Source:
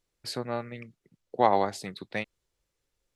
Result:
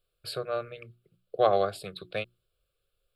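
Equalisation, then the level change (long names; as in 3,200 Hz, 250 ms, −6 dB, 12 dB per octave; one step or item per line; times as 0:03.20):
mains-hum notches 60/120/180/240/300/360 Hz
notch filter 980 Hz, Q 7.7
phaser with its sweep stopped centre 1,300 Hz, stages 8
+3.5 dB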